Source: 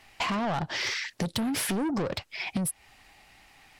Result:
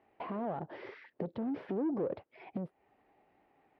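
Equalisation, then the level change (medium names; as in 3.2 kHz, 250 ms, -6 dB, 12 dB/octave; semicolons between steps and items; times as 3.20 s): band-pass filter 420 Hz, Q 1.6; distance through air 310 m; 0.0 dB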